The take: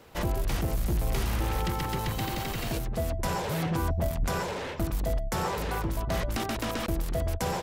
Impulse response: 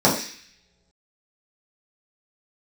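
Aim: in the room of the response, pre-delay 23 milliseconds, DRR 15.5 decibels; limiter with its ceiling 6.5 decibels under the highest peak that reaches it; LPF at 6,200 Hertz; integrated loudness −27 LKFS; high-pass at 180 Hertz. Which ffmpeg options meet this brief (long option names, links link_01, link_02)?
-filter_complex "[0:a]highpass=180,lowpass=6200,alimiter=level_in=1.5dB:limit=-24dB:level=0:latency=1,volume=-1.5dB,asplit=2[link_01][link_02];[1:a]atrim=start_sample=2205,adelay=23[link_03];[link_02][link_03]afir=irnorm=-1:irlink=0,volume=-36dB[link_04];[link_01][link_04]amix=inputs=2:normalize=0,volume=8.5dB"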